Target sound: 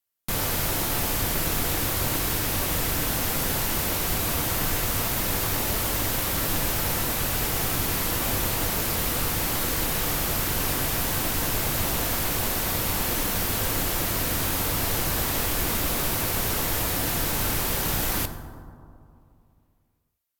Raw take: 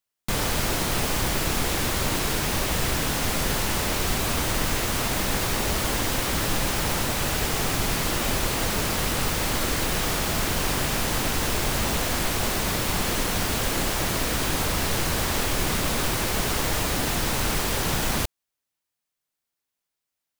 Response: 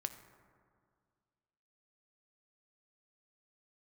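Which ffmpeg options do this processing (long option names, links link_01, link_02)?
-filter_complex "[0:a]equalizer=frequency=14000:width_type=o:width=0.62:gain=11[link_01];[1:a]atrim=start_sample=2205,asetrate=34839,aresample=44100[link_02];[link_01][link_02]afir=irnorm=-1:irlink=0,volume=-2.5dB"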